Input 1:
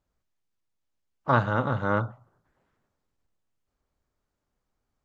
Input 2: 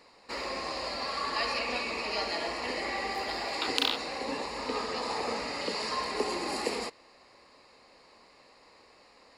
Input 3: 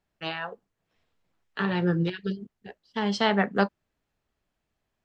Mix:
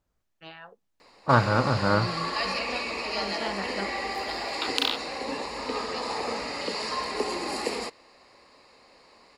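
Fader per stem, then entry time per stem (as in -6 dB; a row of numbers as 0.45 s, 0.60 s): +2.0 dB, +2.0 dB, -12.0 dB; 0.00 s, 1.00 s, 0.20 s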